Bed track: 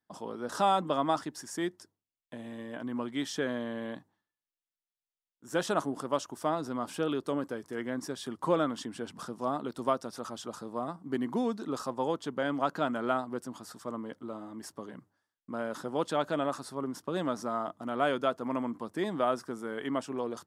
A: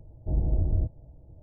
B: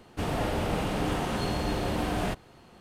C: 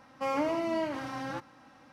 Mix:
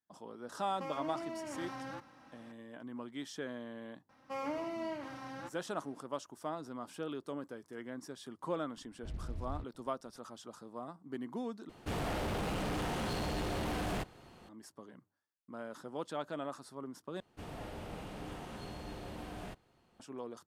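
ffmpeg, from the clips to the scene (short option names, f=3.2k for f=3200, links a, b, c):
-filter_complex "[3:a]asplit=2[a][b];[2:a]asplit=2[c][d];[0:a]volume=-9.5dB[e];[a]acompressor=threshold=-36dB:ratio=6:attack=3.2:release=140:knee=1:detection=peak[f];[1:a]acrusher=bits=6:mix=0:aa=0.5[g];[c]asoftclip=type=hard:threshold=-30.5dB[h];[e]asplit=3[i][j][k];[i]atrim=end=11.694[l];[h]atrim=end=2.8,asetpts=PTS-STARTPTS,volume=-3dB[m];[j]atrim=start=14.486:end=17.204[n];[d]atrim=end=2.8,asetpts=PTS-STARTPTS,volume=-16dB[o];[k]atrim=start=19.996[p];[f]atrim=end=1.92,asetpts=PTS-STARTPTS,volume=-3dB,afade=t=in:d=0.004:c=hsin,afade=t=out:st=1.916:d=0.004:c=hsin,adelay=600[q];[b]atrim=end=1.92,asetpts=PTS-STARTPTS,volume=-8.5dB,afade=t=in:d=0.004:c=hsin,afade=t=out:st=1.916:d=0.004:c=hsin,adelay=180369S[r];[g]atrim=end=1.42,asetpts=PTS-STARTPTS,volume=-17dB,afade=t=in:d=0.004:c=hsin,afade=t=out:st=1.416:d=0.004:c=hsin,adelay=8770[s];[l][m]acrossfade=d=0.004:c1=hsin:c2=hsin[t];[t][n]acrossfade=d=0.004:c1=hsin:c2=hsin[u];[u][o]acrossfade=d=0.004:c1=hsin:c2=hsin[v];[v][p]acrossfade=d=0.004:c1=hsin:c2=hsin[w];[w][q][r][s]amix=inputs=4:normalize=0"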